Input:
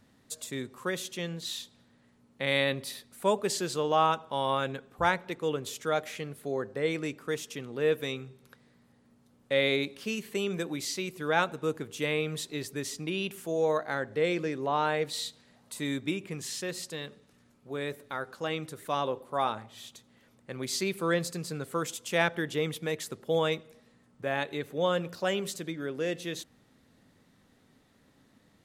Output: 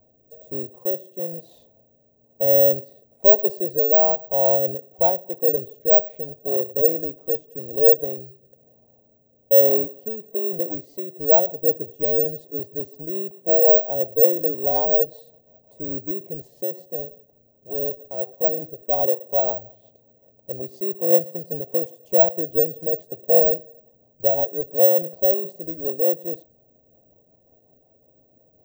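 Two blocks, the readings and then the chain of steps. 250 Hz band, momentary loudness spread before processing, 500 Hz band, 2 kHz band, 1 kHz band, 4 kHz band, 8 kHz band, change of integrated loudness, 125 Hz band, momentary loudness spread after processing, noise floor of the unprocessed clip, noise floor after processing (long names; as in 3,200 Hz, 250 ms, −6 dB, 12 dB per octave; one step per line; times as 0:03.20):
+1.0 dB, 11 LU, +10.0 dB, below −20 dB, +1.0 dB, below −20 dB, below −20 dB, +12.5 dB, −0.5 dB, 15 LU, −65 dBFS, −61 dBFS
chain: drawn EQ curve 130 Hz 0 dB, 210 Hz −8 dB, 660 Hz +13 dB, 1,300 Hz −25 dB
rotating-speaker cabinet horn 1.1 Hz, later 5.5 Hz, at 0:10.10
bad sample-rate conversion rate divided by 2×, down none, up zero stuff
level +3.5 dB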